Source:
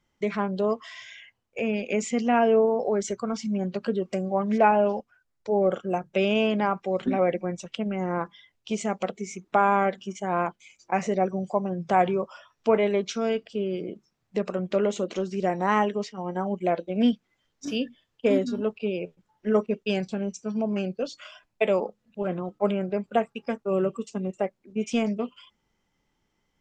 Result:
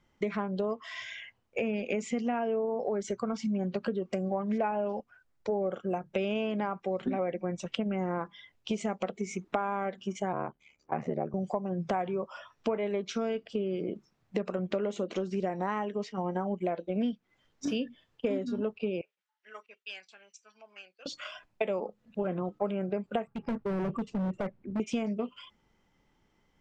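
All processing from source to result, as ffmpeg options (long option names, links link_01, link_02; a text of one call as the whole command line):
ffmpeg -i in.wav -filter_complex "[0:a]asettb=1/sr,asplit=3[link_01][link_02][link_03];[link_01]atrim=end=10.324[link_04];[link_02]atrim=start=10.32:end=11.34,asetpts=PTS-STARTPTS,afade=type=in:duration=0.004:curve=qsin,afade=type=out:start_time=1.016:duration=0.004:curve=qsin,lowpass=frequency=1100:poles=1,aeval=exprs='val(0)*sin(2*PI*37*n/s)':channel_layout=same[link_05];[link_03]atrim=start=11.336[link_06];[link_04][link_05]acrossfade=duration=0.004:curve1=hsin:curve2=qsin[link_07];[link_07][link_06]acrossfade=duration=0.004:curve1=qsin:curve2=hsin,asettb=1/sr,asplit=3[link_08][link_09][link_10];[link_08]atrim=end=19.014[link_11];[link_09]atrim=start=19.01:end=21.06,asetpts=PTS-STARTPTS,afade=type=in:duration=0.004:curve=qsin,afade=type=out:start_time=2.046:duration=0.004:curve=qsin,bandpass=frequency=1800:width_type=q:width=0.84,aderivative[link_12];[link_10]atrim=start=21.056[link_13];[link_11][link_12]acrossfade=duration=0.004:curve1=hsin:curve2=qsin[link_14];[link_14][link_13]acrossfade=duration=0.004:curve1=qsin:curve2=hsin,asettb=1/sr,asplit=3[link_15][link_16][link_17];[link_15]atrim=end=23.274[link_18];[link_16]atrim=start=23.27:end=24.8,asetpts=PTS-STARTPTS,afade=type=in:duration=0.004:curve=qsin,afade=type=out:start_time=1.526:duration=0.004:curve=qsin,bass=frequency=250:gain=11,treble=frequency=4000:gain=-15,acompressor=threshold=-23dB:ratio=8:attack=3.2:release=140:knee=1:detection=peak,asoftclip=type=hard:threshold=-31.5dB[link_19];[link_17]atrim=start=24.796[link_20];[link_18][link_19]acrossfade=duration=0.004:curve1=hsin:curve2=qsin[link_21];[link_21][link_20]acrossfade=duration=0.004:curve1=qsin:curve2=hsin,highshelf=frequency=4400:gain=-8.5,acompressor=threshold=-33dB:ratio=6,volume=4.5dB" out.wav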